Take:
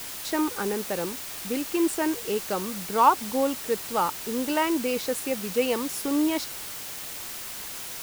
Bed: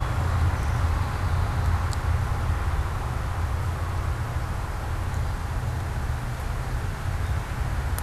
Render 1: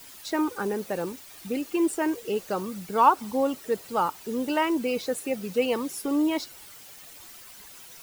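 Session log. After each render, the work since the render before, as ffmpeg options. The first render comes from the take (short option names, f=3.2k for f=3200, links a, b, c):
-af "afftdn=nr=12:nf=-37"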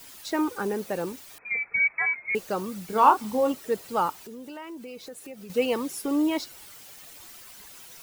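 -filter_complex "[0:a]asettb=1/sr,asplit=3[a][b][c];[a]atrim=end=1.384[d];[b]atrim=start=1.38:end=2.35,asetpts=PTS-STARTPTS,afade=t=in:d=0.004:c=qsin,afade=t=out:st=0.966:d=0.004:c=qsin,lowpass=f=2.2k:t=q:w=0.5098,lowpass=f=2.2k:t=q:w=0.6013,lowpass=f=2.2k:t=q:w=0.9,lowpass=f=2.2k:t=q:w=2.563,afreqshift=-2600[e];[c]atrim=start=2.346[f];[d][e]acrossfade=d=0.004:c1=hsin:c2=qsin[g];[g][f]acrossfade=d=0.004:c1=qsin:c2=hsin,asettb=1/sr,asplit=3[h][i][j];[h]atrim=end=2.864[k];[i]atrim=start=2.86:end=3.52,asetpts=PTS-STARTPTS,afade=t=in:d=0.004:c=qsin,afade=t=out:st=0.656:d=0.004:c=qsin,asplit=2[l][m];[m]adelay=28,volume=-5.5dB[n];[l][n]amix=inputs=2:normalize=0,atrim=end_sample=29106[o];[j]atrim=start=3.516[p];[k][o]acrossfade=d=0.004:c1=hsin:c2=qsin[q];[q][p]acrossfade=d=0.004:c1=qsin:c2=hsin,asettb=1/sr,asplit=3[r][s][t];[r]atrim=end=4.124[u];[s]atrim=start=4.12:end=5.5,asetpts=PTS-STARTPTS,afade=t=in:d=0.004:c=qsin,afade=t=out:st=1.376:d=0.004:c=qsin,acompressor=threshold=-42dB:ratio=3:attack=3.2:release=140:knee=1:detection=peak[v];[t]atrim=start=5.496[w];[u][v]acrossfade=d=0.004:c1=hsin:c2=qsin[x];[x][w]acrossfade=d=0.004:c1=qsin:c2=hsin"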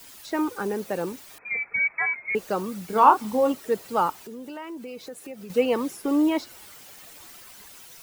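-filter_complex "[0:a]acrossover=split=130|2300[a][b][c];[b]dynaudnorm=f=670:g=3:m=3dB[d];[c]alimiter=level_in=8.5dB:limit=-24dB:level=0:latency=1:release=89,volume=-8.5dB[e];[a][d][e]amix=inputs=3:normalize=0"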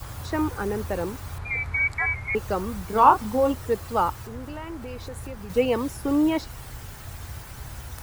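-filter_complex "[1:a]volume=-11.5dB[a];[0:a][a]amix=inputs=2:normalize=0"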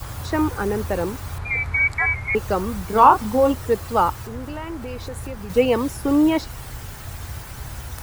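-af "volume=4.5dB,alimiter=limit=-2dB:level=0:latency=1"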